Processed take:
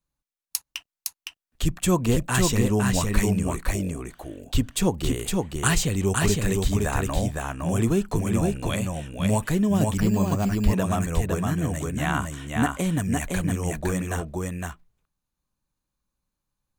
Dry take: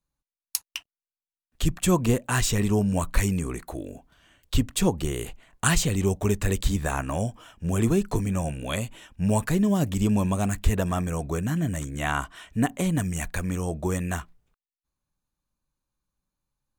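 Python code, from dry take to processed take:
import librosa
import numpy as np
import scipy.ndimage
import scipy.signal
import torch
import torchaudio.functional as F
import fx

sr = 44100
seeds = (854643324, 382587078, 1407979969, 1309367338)

p1 = x + fx.echo_single(x, sr, ms=511, db=-3.0, dry=0)
y = fx.resample_bad(p1, sr, factor=6, down='filtered', up='hold', at=(9.97, 10.73))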